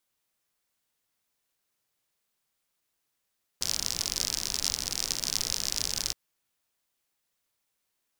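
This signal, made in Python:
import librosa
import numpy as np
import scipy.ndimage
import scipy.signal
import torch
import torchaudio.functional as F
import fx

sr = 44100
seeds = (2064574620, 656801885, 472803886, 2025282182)

y = fx.rain(sr, seeds[0], length_s=2.52, drops_per_s=60.0, hz=5300.0, bed_db=-10.5)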